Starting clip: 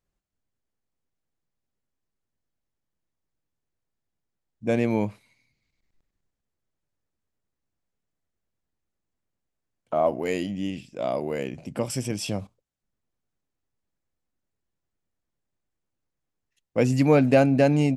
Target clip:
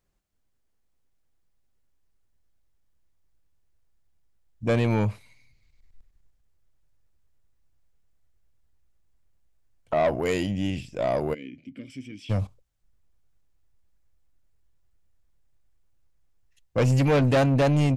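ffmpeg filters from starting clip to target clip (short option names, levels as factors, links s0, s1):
-filter_complex "[0:a]asubboost=boost=5.5:cutoff=88,asoftclip=type=tanh:threshold=0.0794,asplit=3[s0][s1][s2];[s0]afade=t=out:st=11.33:d=0.02[s3];[s1]asplit=3[s4][s5][s6];[s4]bandpass=f=270:t=q:w=8,volume=1[s7];[s5]bandpass=f=2290:t=q:w=8,volume=0.501[s8];[s6]bandpass=f=3010:t=q:w=8,volume=0.355[s9];[s7][s8][s9]amix=inputs=3:normalize=0,afade=t=in:st=11.33:d=0.02,afade=t=out:st=12.29:d=0.02[s10];[s2]afade=t=in:st=12.29:d=0.02[s11];[s3][s10][s11]amix=inputs=3:normalize=0,volume=1.78"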